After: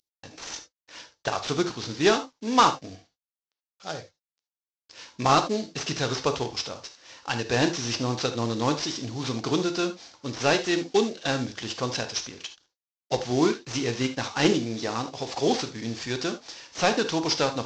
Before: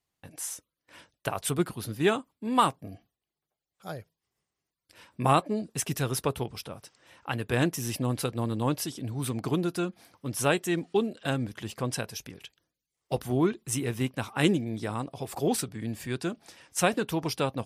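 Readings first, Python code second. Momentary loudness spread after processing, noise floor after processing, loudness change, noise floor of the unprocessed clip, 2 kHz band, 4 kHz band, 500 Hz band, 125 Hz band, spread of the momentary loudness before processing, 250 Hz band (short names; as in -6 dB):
16 LU, under -85 dBFS, +3.5 dB, under -85 dBFS, +4.5 dB, +8.5 dB, +4.0 dB, -1.5 dB, 16 LU, +2.0 dB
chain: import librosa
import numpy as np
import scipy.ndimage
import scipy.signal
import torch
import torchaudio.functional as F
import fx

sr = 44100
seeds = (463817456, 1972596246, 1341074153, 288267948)

y = fx.cvsd(x, sr, bps=32000)
y = fx.bass_treble(y, sr, bass_db=-7, treble_db=12)
y = fx.rev_gated(y, sr, seeds[0], gate_ms=100, shape='flat', drr_db=8.0)
y = F.gain(torch.from_numpy(y), 4.5).numpy()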